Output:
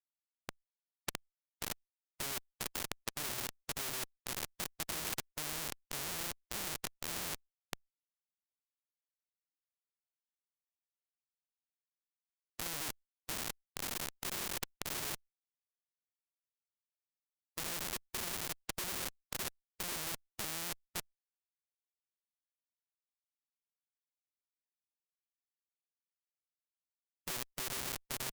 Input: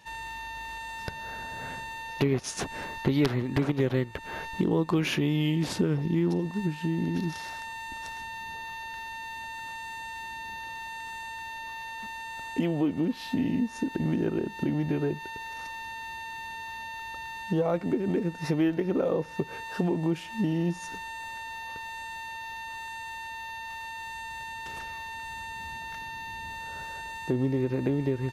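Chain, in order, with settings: echo 0.289 s -10.5 dB; in parallel at -9 dB: soft clip -30 dBFS, distortion -7 dB; on the sum: bell 390 Hz +8.5 dB 0.37 oct; tremolo 1.8 Hz, depth 89%; low shelf 150 Hz +5.5 dB; notch 1200 Hz, Q 21; comb 5.4 ms, depth 45%; Schmitt trigger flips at -26 dBFS; spectral compressor 4:1; gain +4 dB

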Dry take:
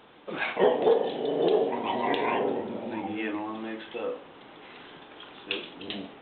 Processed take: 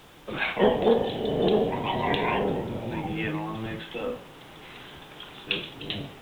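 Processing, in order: octaver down 1 oct, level +1 dB; high shelf 2700 Hz +7.5 dB; added noise pink -57 dBFS

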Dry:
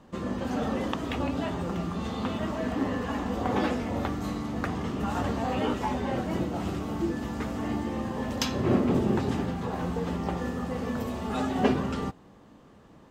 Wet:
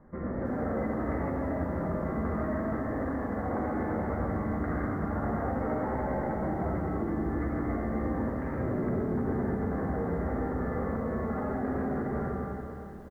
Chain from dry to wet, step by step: reverb RT60 2.6 s, pre-delay 30 ms, DRR -4 dB; limiter -19.5 dBFS, peak gain reduction 10.5 dB; rippled Chebyshev low-pass 2100 Hz, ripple 3 dB; low shelf 110 Hz +10 dB; doubler 13 ms -10 dB; lo-fi delay 0.324 s, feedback 55%, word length 9-bit, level -13 dB; gain -3.5 dB

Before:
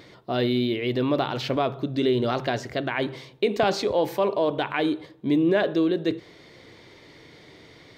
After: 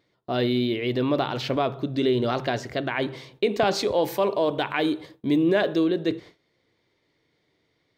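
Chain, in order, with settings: gate with hold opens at -36 dBFS; 3.75–5.84 high shelf 5400 Hz +7 dB

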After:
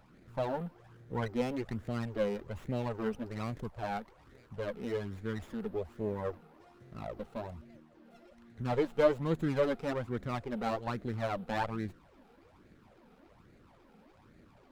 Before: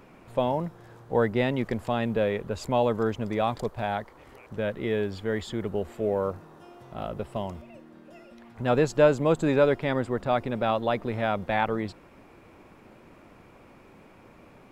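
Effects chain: phaser stages 12, 1.2 Hz, lowest notch 100–1000 Hz; running maximum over 9 samples; gain -5 dB

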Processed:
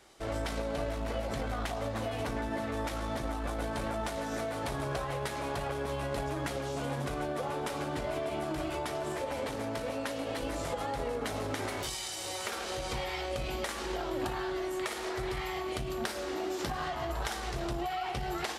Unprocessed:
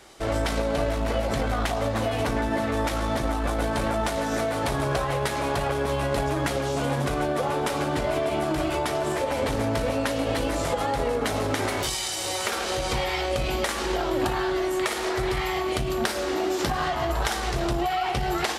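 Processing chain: 9.4–10.42 low shelf 100 Hz -11.5 dB; gain -9 dB

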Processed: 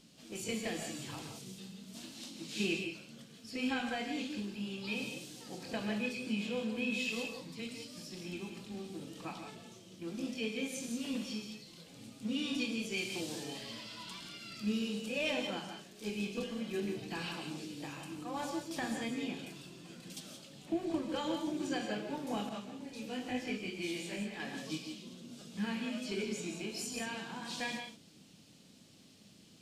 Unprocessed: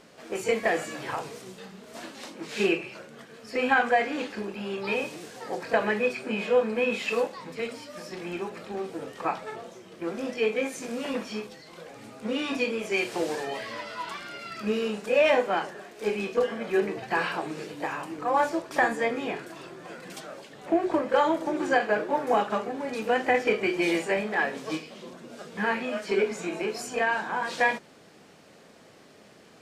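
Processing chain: band shelf 910 Hz -15 dB 2.8 oct; non-linear reverb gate 0.2 s rising, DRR 4.5 dB; 22.49–24.4 detuned doubles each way 40 cents; gain -3 dB

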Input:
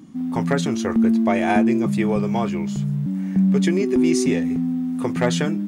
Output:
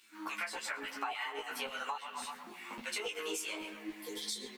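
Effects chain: LFO high-pass saw down 2.9 Hz 660–2300 Hz; varispeed +24%; flange 1 Hz, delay 5.4 ms, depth 1.8 ms, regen -86%; spectral repair 3.8–4.48, 530–3100 Hz after; doubler 19 ms -3.5 dB; on a send: darkening echo 0.123 s, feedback 59%, low-pass 2600 Hz, level -12.5 dB; on the sum: compressor 12:1, threshold -36 dBFS, peak gain reduction 17 dB; requantised 12-bit, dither none; ensemble effect; gain +4 dB

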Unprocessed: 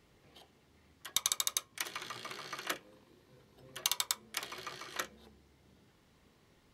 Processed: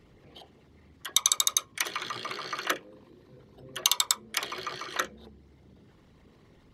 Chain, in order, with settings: formant sharpening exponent 1.5; gain +8.5 dB

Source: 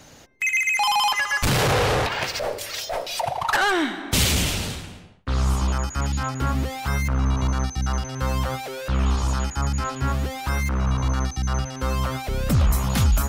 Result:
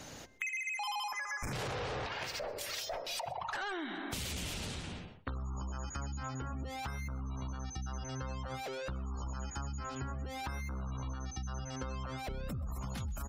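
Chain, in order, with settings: notches 50/100/150 Hz; in parallel at -9.5 dB: soft clip -19.5 dBFS, distortion -15 dB; on the sum: spectral gate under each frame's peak -30 dB strong; limiter -17.5 dBFS, peak gain reduction 7.5 dB; spectral gain 1.07–1.53, 2500–5000 Hz -27 dB; on a send: echo 0.129 s -22 dB; on the sum: compressor 12:1, threshold -33 dBFS, peak gain reduction 13.5 dB; gain -3.5 dB

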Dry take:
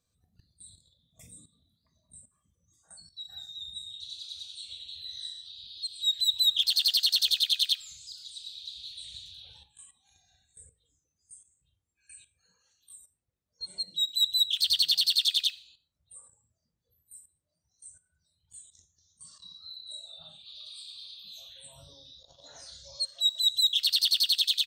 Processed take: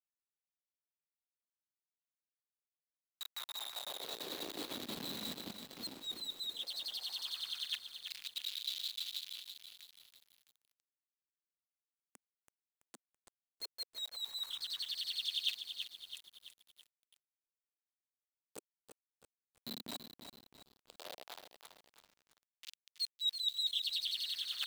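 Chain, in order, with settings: level-crossing sampler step -34 dBFS; reverse; compressor 12:1, threshold -38 dBFS, peak gain reduction 19 dB; reverse; LFO high-pass sine 0.14 Hz 220–3500 Hz; lo-fi delay 0.331 s, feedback 55%, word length 9-bit, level -7 dB; gain -1.5 dB

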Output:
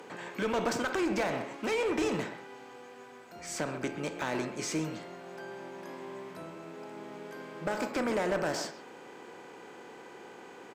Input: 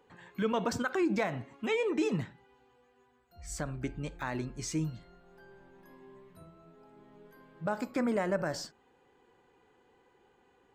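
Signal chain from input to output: per-bin compression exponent 0.6; HPF 110 Hz 12 dB/oct; low shelf 150 Hz -12 dB; speakerphone echo 0.13 s, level -11 dB; one-sided clip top -27 dBFS

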